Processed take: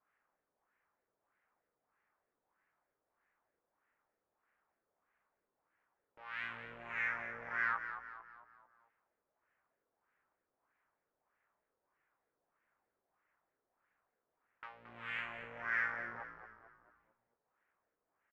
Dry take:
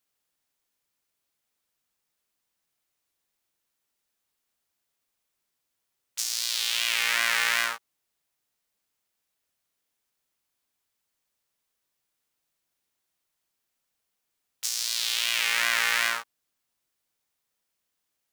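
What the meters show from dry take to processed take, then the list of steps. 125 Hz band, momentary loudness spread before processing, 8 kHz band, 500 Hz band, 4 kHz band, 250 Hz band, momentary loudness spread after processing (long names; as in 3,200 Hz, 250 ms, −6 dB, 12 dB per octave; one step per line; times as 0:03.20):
can't be measured, 10 LU, below −40 dB, −8.0 dB, −31.5 dB, −3.5 dB, 19 LU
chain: low-pass filter 2,500 Hz 24 dB per octave
low-shelf EQ 400 Hz −8.5 dB
downward compressor, threshold −33 dBFS, peak gain reduction 11 dB
hard clipping −38 dBFS, distortion −5 dB
auto-filter low-pass sine 1.6 Hz 460–1,800 Hz
on a send: echo with shifted repeats 223 ms, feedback 45%, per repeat −69 Hz, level −9.5 dB
on the sum: level +5 dB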